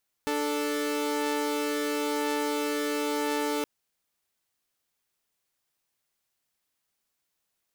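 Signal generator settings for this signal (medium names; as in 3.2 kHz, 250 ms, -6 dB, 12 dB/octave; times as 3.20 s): chord D4/A4 saw, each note -27 dBFS 3.37 s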